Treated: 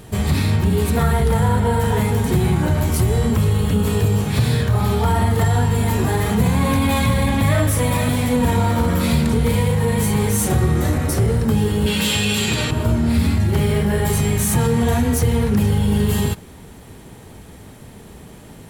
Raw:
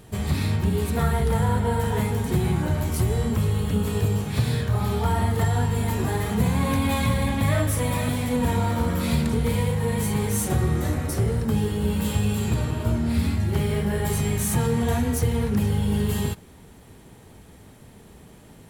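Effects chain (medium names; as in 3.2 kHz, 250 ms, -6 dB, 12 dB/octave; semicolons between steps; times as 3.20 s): 11.86–12.71 s: frequency weighting D; in parallel at +3 dB: peak limiter -18.5 dBFS, peak gain reduction 8 dB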